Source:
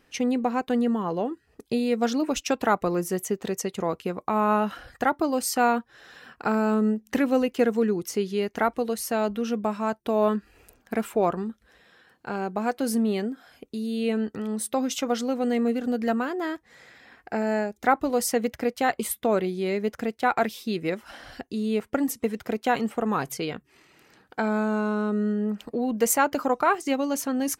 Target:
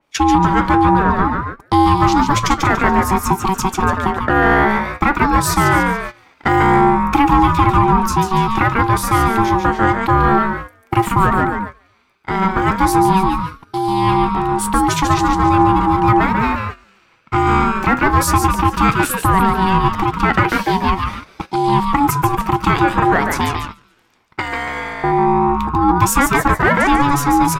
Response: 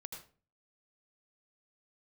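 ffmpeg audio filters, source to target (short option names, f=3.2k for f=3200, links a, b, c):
-filter_complex "[0:a]asettb=1/sr,asplit=3[a][b][c];[a]atrim=end=24.394[d];[b]atrim=start=24.39:end=25.04,asetpts=PTS-STARTPTS,afade=t=in:d=0.004:c=qsin,afade=t=out:st=0.646:d=0.004:c=qsin,highpass=1.3k[e];[c]atrim=start=25.036[f];[d][e]acrossfade=d=0.004:c1=hsin:c2=qsin[g];[g][f]acrossfade=d=0.004:c1=qsin:c2=hsin,asplit=2[h][i];[i]asplit=5[j][k][l][m][n];[j]adelay=143,afreqshift=150,volume=-6dB[o];[k]adelay=286,afreqshift=300,volume=-14.4dB[p];[l]adelay=429,afreqshift=450,volume=-22.8dB[q];[m]adelay=572,afreqshift=600,volume=-31.2dB[r];[n]adelay=715,afreqshift=750,volume=-39.6dB[s];[o][p][q][r][s]amix=inputs=5:normalize=0[t];[h][t]amix=inputs=2:normalize=0,flanger=delay=7.5:depth=1.5:regen=81:speed=0.15:shape=sinusoidal,agate=range=-16dB:threshold=-41dB:ratio=16:detection=peak,asplit=2[u][v];[v]asoftclip=type=tanh:threshold=-28.5dB,volume=-4dB[w];[u][w]amix=inputs=2:normalize=0,aeval=exprs='val(0)*sin(2*PI*570*n/s)':c=same,alimiter=level_in=16.5dB:limit=-1dB:release=50:level=0:latency=1,adynamicequalizer=threshold=0.0224:dfrequency=3600:dqfactor=0.7:tfrequency=3600:tqfactor=0.7:attack=5:release=100:ratio=0.375:range=2.5:mode=cutabove:tftype=highshelf,volume=-1dB"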